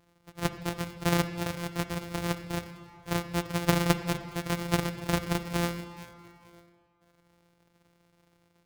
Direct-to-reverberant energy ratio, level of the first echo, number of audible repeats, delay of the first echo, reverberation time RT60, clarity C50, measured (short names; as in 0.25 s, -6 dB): 9.5 dB, none, none, none, 2.3 s, 10.0 dB